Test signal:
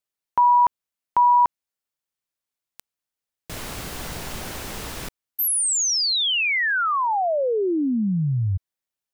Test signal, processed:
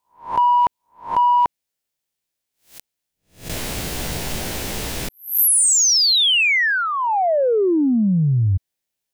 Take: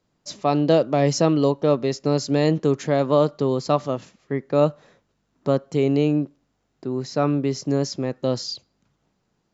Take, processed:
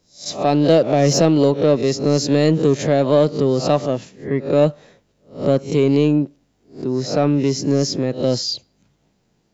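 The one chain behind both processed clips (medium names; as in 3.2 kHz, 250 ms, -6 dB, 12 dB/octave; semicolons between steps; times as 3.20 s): reverse spectral sustain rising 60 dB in 0.34 s; peaking EQ 1.2 kHz -7 dB 0.8 oct; in parallel at -5 dB: saturation -19 dBFS; on the sum: trim +2 dB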